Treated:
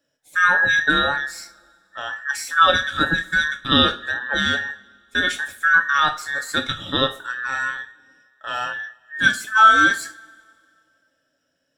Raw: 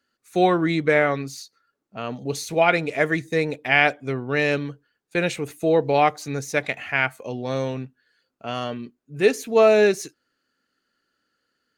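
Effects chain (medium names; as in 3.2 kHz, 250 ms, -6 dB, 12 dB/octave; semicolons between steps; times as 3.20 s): every band turned upside down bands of 2 kHz; two-slope reverb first 0.28 s, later 2.1 s, from -27 dB, DRR 3.5 dB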